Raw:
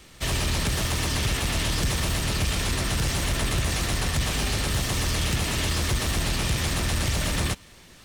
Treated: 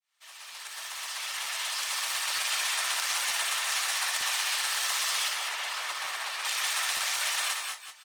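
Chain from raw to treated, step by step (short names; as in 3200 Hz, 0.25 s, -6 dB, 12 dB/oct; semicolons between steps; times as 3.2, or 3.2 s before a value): opening faded in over 2.50 s; HPF 850 Hz 24 dB/oct; feedback echo 0.176 s, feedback 30%, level -7 dB; reverb removal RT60 0.69 s; 5.28–6.45 high shelf 3100 Hz -10.5 dB; tapped delay 58/195/211 ms -6/-7/-8 dB; crackling interface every 0.92 s, samples 512, repeat, from 0.52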